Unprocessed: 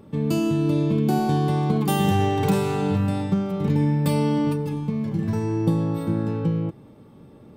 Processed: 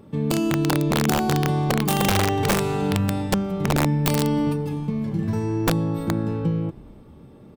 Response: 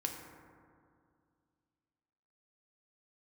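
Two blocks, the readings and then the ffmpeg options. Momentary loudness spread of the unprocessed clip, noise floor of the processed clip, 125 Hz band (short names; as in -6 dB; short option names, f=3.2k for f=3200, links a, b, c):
5 LU, -46 dBFS, -0.5 dB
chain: -filter_complex "[0:a]asplit=5[a][b][c][d][e];[b]adelay=320,afreqshift=-120,volume=-24dB[f];[c]adelay=640,afreqshift=-240,volume=-28.7dB[g];[d]adelay=960,afreqshift=-360,volume=-33.5dB[h];[e]adelay=1280,afreqshift=-480,volume=-38.2dB[i];[a][f][g][h][i]amix=inputs=5:normalize=0,aeval=exprs='(mod(4.47*val(0)+1,2)-1)/4.47':c=same"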